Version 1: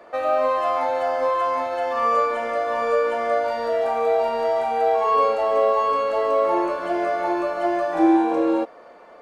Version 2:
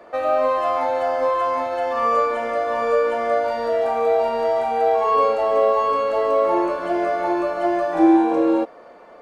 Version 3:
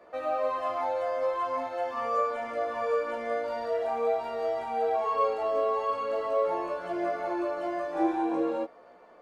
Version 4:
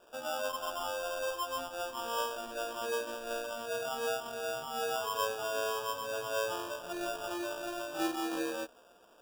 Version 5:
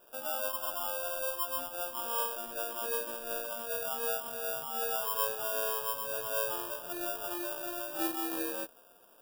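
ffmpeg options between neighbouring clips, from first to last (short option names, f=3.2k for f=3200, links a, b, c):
-af "lowshelf=f=470:g=4"
-af "flanger=delay=15.5:depth=5.6:speed=0.45,volume=-6.5dB"
-af "acrusher=samples=21:mix=1:aa=0.000001,volume=-7dB"
-af "aexciter=amount=3:drive=8.7:freq=9.1k,volume=-2dB"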